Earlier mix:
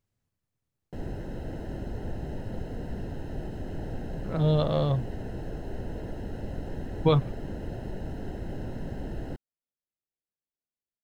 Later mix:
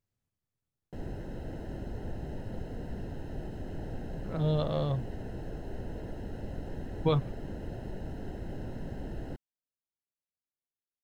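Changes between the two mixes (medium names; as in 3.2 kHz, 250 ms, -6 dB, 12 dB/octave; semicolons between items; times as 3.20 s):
speech -5.0 dB; background -3.5 dB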